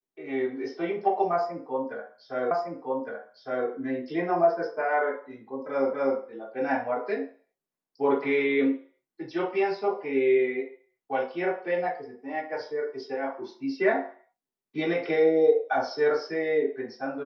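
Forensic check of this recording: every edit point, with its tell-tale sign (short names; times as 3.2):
2.51 repeat of the last 1.16 s
5.93 repeat of the last 0.25 s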